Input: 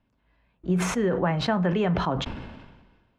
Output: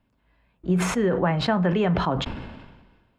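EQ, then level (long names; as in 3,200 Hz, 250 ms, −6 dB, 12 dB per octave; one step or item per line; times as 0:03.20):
notch filter 6,000 Hz, Q 11
+2.0 dB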